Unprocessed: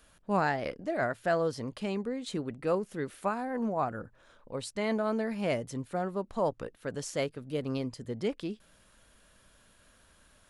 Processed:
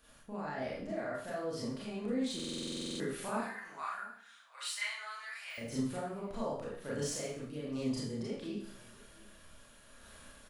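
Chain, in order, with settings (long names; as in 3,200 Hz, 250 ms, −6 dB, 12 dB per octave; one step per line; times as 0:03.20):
de-essing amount 95%
0:03.37–0:05.58: high-pass filter 1,400 Hz 24 dB per octave
downward compressor, threshold −33 dBFS, peak gain reduction 10 dB
brickwall limiter −33.5 dBFS, peak gain reduction 10.5 dB
sample-and-hold tremolo
single-tap delay 703 ms −22.5 dB
four-comb reverb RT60 0.54 s, combs from 27 ms, DRR −7 dB
buffer that repeats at 0:02.35, samples 2,048, times 13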